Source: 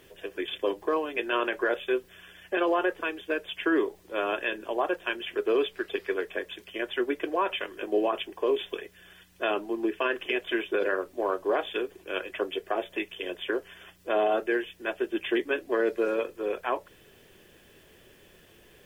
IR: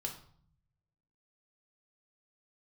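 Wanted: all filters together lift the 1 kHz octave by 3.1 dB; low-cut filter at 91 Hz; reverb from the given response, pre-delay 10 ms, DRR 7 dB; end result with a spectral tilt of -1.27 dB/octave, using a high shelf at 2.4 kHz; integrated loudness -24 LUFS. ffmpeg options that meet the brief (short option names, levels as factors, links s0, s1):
-filter_complex "[0:a]highpass=91,equalizer=f=1000:t=o:g=5.5,highshelf=f=2400:g=-8.5,asplit=2[s0][s1];[1:a]atrim=start_sample=2205,adelay=10[s2];[s1][s2]afir=irnorm=-1:irlink=0,volume=0.473[s3];[s0][s3]amix=inputs=2:normalize=0,volume=1.68"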